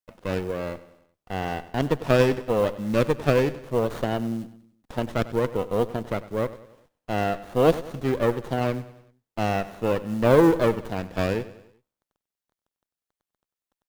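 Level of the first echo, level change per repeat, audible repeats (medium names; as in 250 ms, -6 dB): -16.5 dB, -6.0 dB, 3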